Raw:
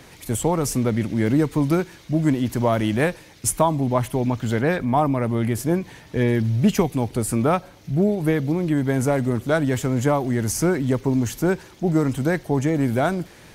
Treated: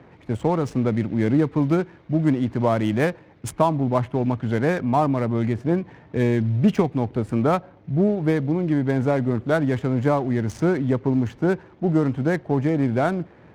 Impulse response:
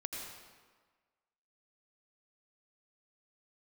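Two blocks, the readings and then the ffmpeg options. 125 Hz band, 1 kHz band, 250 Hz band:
-0.5 dB, -0.5 dB, 0.0 dB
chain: -af "highpass=76,highshelf=f=3500:g=-8.5,adynamicsmooth=sensitivity=7:basefreq=1400"

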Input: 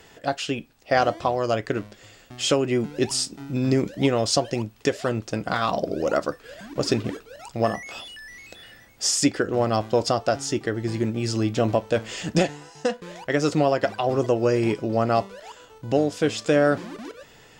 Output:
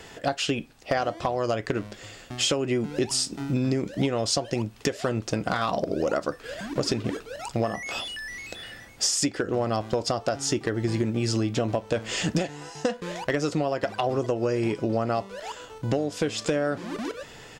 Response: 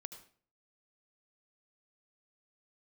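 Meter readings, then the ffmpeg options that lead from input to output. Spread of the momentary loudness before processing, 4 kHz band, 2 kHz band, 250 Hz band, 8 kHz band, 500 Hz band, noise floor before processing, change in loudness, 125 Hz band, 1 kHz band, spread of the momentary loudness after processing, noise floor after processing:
16 LU, -0.5 dB, -2.5 dB, -3.0 dB, -0.5 dB, -4.0 dB, -52 dBFS, -3.5 dB, -2.0 dB, -4.0 dB, 9 LU, -47 dBFS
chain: -af "acompressor=threshold=0.0447:ratio=12,volume=10.6,asoftclip=hard,volume=0.0944,aresample=32000,aresample=44100,volume=1.88"

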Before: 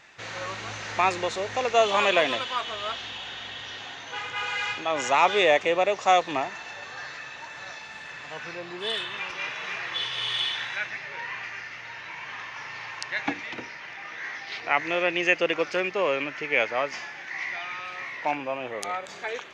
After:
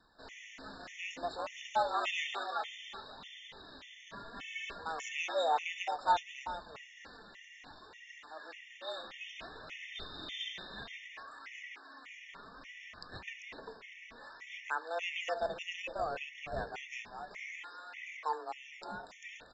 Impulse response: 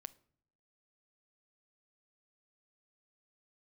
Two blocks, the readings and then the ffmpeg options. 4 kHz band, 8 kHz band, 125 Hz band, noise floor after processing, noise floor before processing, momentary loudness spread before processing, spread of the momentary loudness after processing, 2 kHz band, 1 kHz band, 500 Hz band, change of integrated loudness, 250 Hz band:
-13.0 dB, -12.5 dB, -12.5 dB, -56 dBFS, -41 dBFS, 16 LU, 18 LU, -14.0 dB, -9.5 dB, -14.5 dB, -12.5 dB, -18.0 dB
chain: -filter_complex "[0:a]afreqshift=160,aecho=1:1:393:0.355,asplit=2[s0][s1];[s1]acrusher=samples=21:mix=1:aa=0.000001:lfo=1:lforange=33.6:lforate=0.32,volume=0.422[s2];[s0][s2]amix=inputs=2:normalize=0,flanger=delay=0.5:depth=5.1:regen=46:speed=0.61:shape=triangular[s3];[1:a]atrim=start_sample=2205,asetrate=66150,aresample=44100[s4];[s3][s4]afir=irnorm=-1:irlink=0,aresample=16000,aresample=44100,afftfilt=real='re*gt(sin(2*PI*1.7*pts/sr)*(1-2*mod(floor(b*sr/1024/1800),2)),0)':imag='im*gt(sin(2*PI*1.7*pts/sr)*(1-2*mod(floor(b*sr/1024/1800),2)),0)':win_size=1024:overlap=0.75,volume=1.12"

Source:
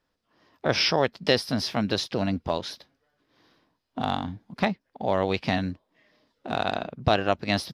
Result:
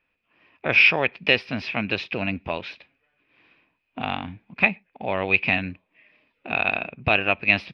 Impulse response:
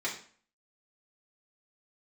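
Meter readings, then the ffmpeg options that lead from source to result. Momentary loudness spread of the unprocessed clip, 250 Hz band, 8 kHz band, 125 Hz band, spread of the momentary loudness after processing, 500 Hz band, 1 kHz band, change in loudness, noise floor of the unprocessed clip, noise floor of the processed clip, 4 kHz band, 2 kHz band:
12 LU, -2.5 dB, under -15 dB, -2.5 dB, 16 LU, -2.0 dB, -1.0 dB, +4.5 dB, -78 dBFS, -75 dBFS, 0.0 dB, +11.5 dB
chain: -filter_complex "[0:a]lowpass=f=2500:t=q:w=13,asplit=2[s0][s1];[1:a]atrim=start_sample=2205,atrim=end_sample=6174[s2];[s1][s2]afir=irnorm=-1:irlink=0,volume=0.0376[s3];[s0][s3]amix=inputs=2:normalize=0,volume=0.75"

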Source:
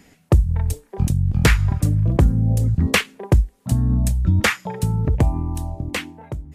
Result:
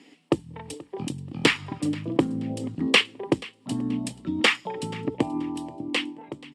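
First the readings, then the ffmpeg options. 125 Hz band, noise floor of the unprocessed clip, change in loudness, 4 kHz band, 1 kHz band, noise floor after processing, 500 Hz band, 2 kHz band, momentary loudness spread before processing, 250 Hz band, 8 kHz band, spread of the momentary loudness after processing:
-18.5 dB, -58 dBFS, -6.5 dB, +3.0 dB, -3.0 dB, -58 dBFS, -1.5 dB, -1.5 dB, 10 LU, -2.0 dB, -7.0 dB, 13 LU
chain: -filter_complex "[0:a]highpass=f=190:w=0.5412,highpass=f=190:w=1.3066,equalizer=f=190:t=q:w=4:g=-9,equalizer=f=300:t=q:w=4:g=7,equalizer=f=640:t=q:w=4:g=-6,equalizer=f=1500:t=q:w=4:g=-9,equalizer=f=3000:t=q:w=4:g=7,equalizer=f=6700:t=q:w=4:g=-7,lowpass=f=8300:w=0.5412,lowpass=f=8300:w=1.3066,bandreject=f=6100:w=13,asplit=2[s0][s1];[s1]aecho=0:1:481|962:0.0891|0.0276[s2];[s0][s2]amix=inputs=2:normalize=0,volume=0.891"

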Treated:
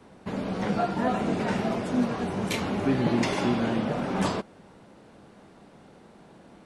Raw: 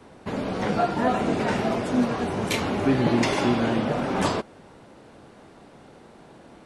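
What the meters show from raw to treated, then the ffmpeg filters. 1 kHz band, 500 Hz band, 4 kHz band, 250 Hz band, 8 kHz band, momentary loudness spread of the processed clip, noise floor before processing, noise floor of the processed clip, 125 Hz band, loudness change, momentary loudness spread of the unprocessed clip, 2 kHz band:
-4.0 dB, -4.0 dB, -4.0 dB, -2.0 dB, -4.0 dB, 6 LU, -50 dBFS, -53 dBFS, -2.0 dB, -3.0 dB, 7 LU, -4.0 dB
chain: -af "equalizer=f=190:t=o:w=0.35:g=6,volume=0.631"

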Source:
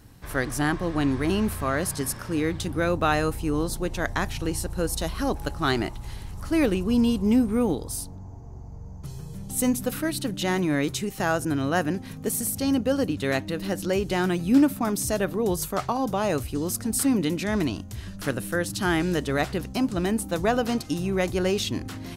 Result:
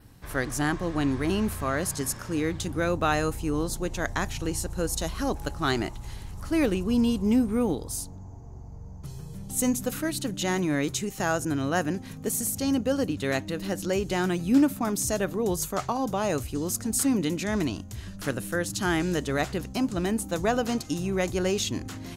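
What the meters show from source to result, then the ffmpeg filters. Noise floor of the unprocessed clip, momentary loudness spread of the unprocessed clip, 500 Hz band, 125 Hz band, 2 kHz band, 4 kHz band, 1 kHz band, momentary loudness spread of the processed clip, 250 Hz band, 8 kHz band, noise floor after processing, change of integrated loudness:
-40 dBFS, 9 LU, -2.0 dB, -2.0 dB, -2.0 dB, -1.5 dB, -2.0 dB, 9 LU, -2.0 dB, +0.5 dB, -42 dBFS, -2.0 dB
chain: -af "adynamicequalizer=threshold=0.00251:dfrequency=6800:dqfactor=3.9:tfrequency=6800:tqfactor=3.9:attack=5:release=100:ratio=0.375:range=4:mode=boostabove:tftype=bell,volume=0.794"

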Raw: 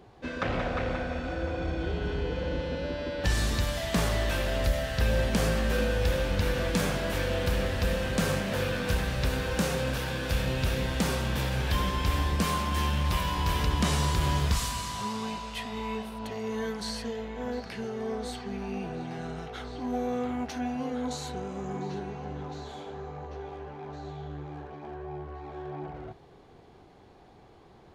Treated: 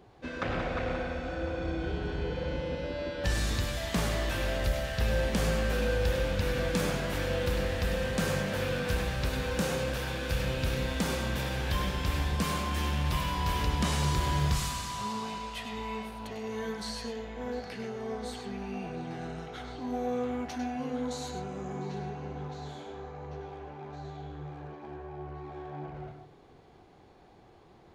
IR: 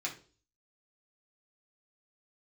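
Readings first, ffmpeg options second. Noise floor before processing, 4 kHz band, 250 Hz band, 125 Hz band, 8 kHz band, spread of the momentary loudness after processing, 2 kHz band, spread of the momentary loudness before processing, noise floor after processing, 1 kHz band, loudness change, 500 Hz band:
-54 dBFS, -2.0 dB, -2.5 dB, -2.5 dB, -2.5 dB, 13 LU, -2.0 dB, 13 LU, -56 dBFS, -2.0 dB, -2.0 dB, -1.5 dB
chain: -filter_complex "[0:a]asplit=2[s0][s1];[1:a]atrim=start_sample=2205,adelay=98[s2];[s1][s2]afir=irnorm=-1:irlink=0,volume=0.376[s3];[s0][s3]amix=inputs=2:normalize=0,volume=0.708"

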